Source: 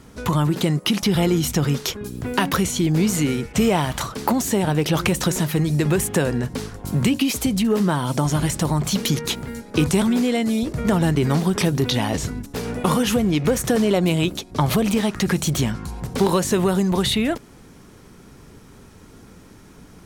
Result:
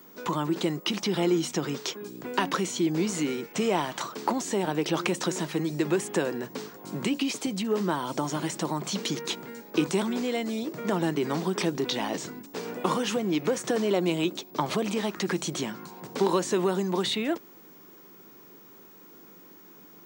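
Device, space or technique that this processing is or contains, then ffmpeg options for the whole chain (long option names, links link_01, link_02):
old television with a line whistle: -af "highpass=frequency=190:width=0.5412,highpass=frequency=190:width=1.3066,equalizer=frequency=240:width_type=q:width=4:gain=-5,equalizer=frequency=340:width_type=q:width=4:gain=5,equalizer=frequency=1000:width_type=q:width=4:gain=3,lowpass=frequency=8200:width=0.5412,lowpass=frequency=8200:width=1.3066,aeval=exprs='val(0)+0.00631*sin(2*PI*15625*n/s)':channel_layout=same,volume=-6.5dB"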